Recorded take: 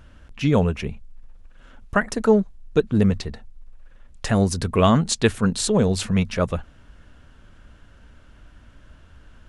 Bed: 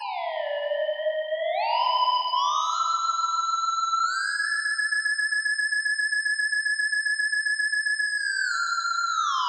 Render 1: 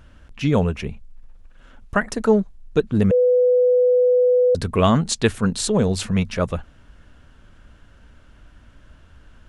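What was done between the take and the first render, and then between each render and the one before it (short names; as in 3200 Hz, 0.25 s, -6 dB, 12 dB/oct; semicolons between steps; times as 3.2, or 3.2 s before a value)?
3.11–4.55 bleep 497 Hz -12.5 dBFS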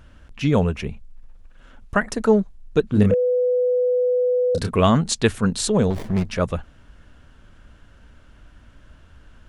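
2.9–4.71 doubler 29 ms -6 dB; 5.9–6.3 running maximum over 33 samples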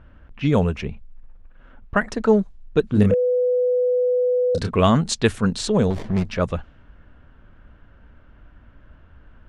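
low-pass opened by the level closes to 1900 Hz, open at -14 dBFS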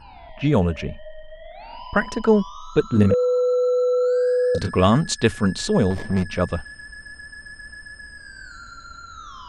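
add bed -15 dB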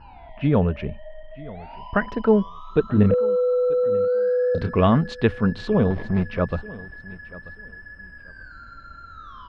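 air absorption 350 m; feedback echo 0.937 s, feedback 24%, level -19.5 dB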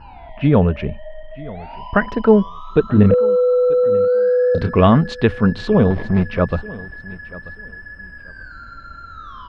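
gain +5.5 dB; limiter -1 dBFS, peak gain reduction 2 dB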